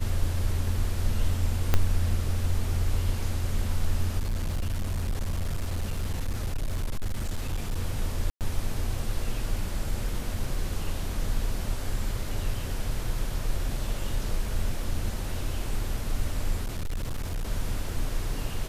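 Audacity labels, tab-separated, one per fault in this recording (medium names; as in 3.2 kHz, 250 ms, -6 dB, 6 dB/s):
1.740000	1.740000	pop -8 dBFS
4.180000	7.790000	clipped -24.5 dBFS
8.300000	8.410000	dropout 108 ms
16.650000	17.450000	clipped -26.5 dBFS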